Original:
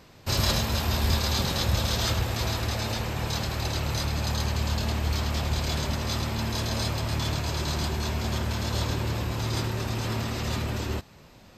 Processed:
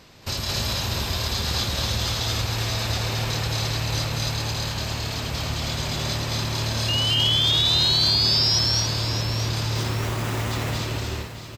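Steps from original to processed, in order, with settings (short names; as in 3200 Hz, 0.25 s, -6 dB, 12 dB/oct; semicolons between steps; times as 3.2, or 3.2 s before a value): compressor, threshold -28 dBFS, peak gain reduction 9 dB; 6.88–8.59 painted sound rise 2800–5700 Hz -30 dBFS; bell 4300 Hz +5 dB 2.1 oct; 9.75–10.51 sample-rate reducer 4800 Hz, jitter 0%; on a send: loudspeakers at several distances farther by 76 m -1 dB, 95 m -4 dB; on the sum: lo-fi delay 0.624 s, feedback 35%, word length 8-bit, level -11 dB; gain +1 dB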